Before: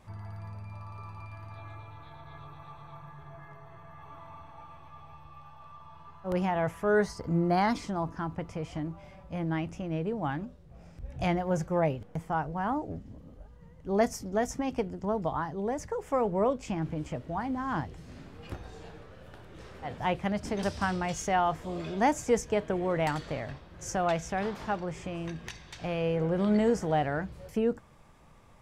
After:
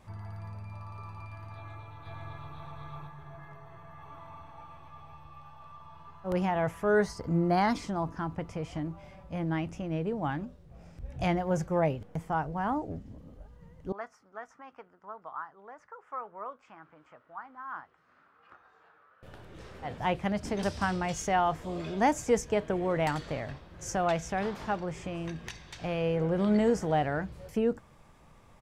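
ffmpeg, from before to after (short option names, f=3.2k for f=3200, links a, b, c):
-filter_complex "[0:a]asplit=2[a][b];[b]afade=t=in:st=1.54:d=0.01,afade=t=out:st=2.56:d=0.01,aecho=0:1:510|1020|1530:0.891251|0.133688|0.0200531[c];[a][c]amix=inputs=2:normalize=0,asettb=1/sr,asplit=3[d][e][f];[d]atrim=end=13.924[g];[e]atrim=start=13.92:end=19.23,asetpts=PTS-STARTPTS,afade=t=in:d=0.004:c=qsin,afade=t=out:st=5.306:d=0.004:c=qsin,bandpass=f=1.3k:t=q:w=3.9[h];[f]atrim=start=19.226[i];[g][h]acrossfade=d=0.004:c1=hsin:c2=qsin[j];[j][i]acrossfade=d=0.004:c1=qsin:c2=hsin"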